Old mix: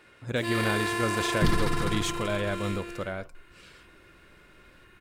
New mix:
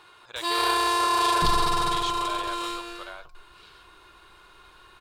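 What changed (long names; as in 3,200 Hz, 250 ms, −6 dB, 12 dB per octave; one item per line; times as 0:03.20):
speech: add resonant band-pass 2,200 Hz, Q 0.98
first sound +5.0 dB
master: add octave-band graphic EQ 125/250/1,000/2,000/4,000 Hz −5/−11/+9/−11/+9 dB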